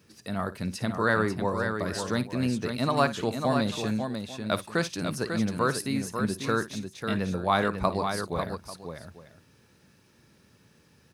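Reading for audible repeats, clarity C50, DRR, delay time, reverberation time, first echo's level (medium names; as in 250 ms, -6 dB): 3, no reverb, no reverb, 55 ms, no reverb, -15.0 dB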